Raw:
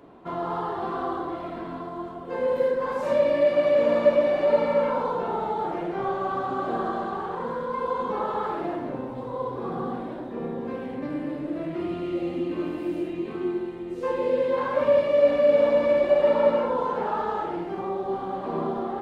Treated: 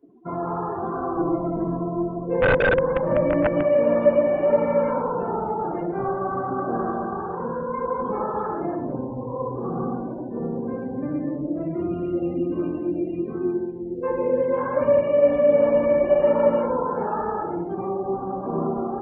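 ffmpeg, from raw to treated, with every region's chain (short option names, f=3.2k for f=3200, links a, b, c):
-filter_complex "[0:a]asettb=1/sr,asplit=3[a][b][c];[a]atrim=end=1.164[d];[b]atrim=start=1.16:end=3.63,asetpts=PTS-STARTPTS,afade=t=in:d=0.004:c=qsin,afade=t=out:st=2.466:d=0.004:c=qsin,tiltshelf=f=880:g=4.5,aecho=1:1:6.1:0.8,atrim=end_sample=108927,aeval=exprs='(mod(4.73*val(0)+1,2)-1)/4.73':c=same[e];[c]atrim=start=3.626[f];[d][e]acrossfade=d=0.004:c1=hsin:c2=qsin[g];[g][f]acrossfade=d=0.004:c1=qsin:c2=hsin,asettb=1/sr,asplit=3[h][i][j];[h]atrim=end=9.904[k];[i]atrim=start=9.9:end=11.19,asetpts=PTS-STARTPTS,afade=t=in:d=0.004:c=qsin,afade=t=out:st=1.286:d=0.004:c=qsin,acrusher=bits=7:mode=log:mix=0:aa=0.000001,aeval=exprs='val(0)+0.00112*sin(2*PI*1500*n/s)':c=same[l];[j]atrim=start=11.186[m];[k][l]acrossfade=d=0.004:c1=hsin:c2=qsin[n];[n][m]acrossfade=d=0.004:c1=qsin:c2=hsin,acrossover=split=2500[o][p];[p]acompressor=threshold=-50dB:ratio=4:attack=1:release=60[q];[o][q]amix=inputs=2:normalize=0,afftdn=nr=27:nf=-39,lowshelf=f=270:g=8.5"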